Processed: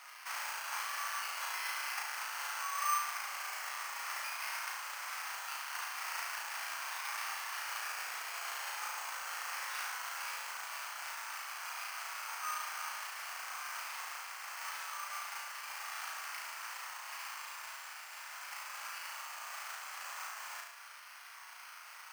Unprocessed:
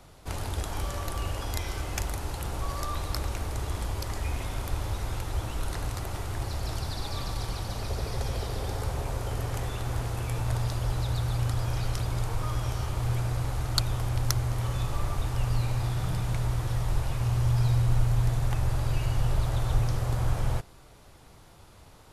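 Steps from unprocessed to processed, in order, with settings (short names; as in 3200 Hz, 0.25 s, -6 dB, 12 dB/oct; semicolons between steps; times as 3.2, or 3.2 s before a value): CVSD 16 kbps; compressor, threshold -33 dBFS, peak gain reduction 14.5 dB; on a send: flutter echo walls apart 6.1 m, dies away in 0.76 s; on the sum: careless resampling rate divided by 6×, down none, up hold; HPF 1100 Hz 24 dB/oct; gain +6 dB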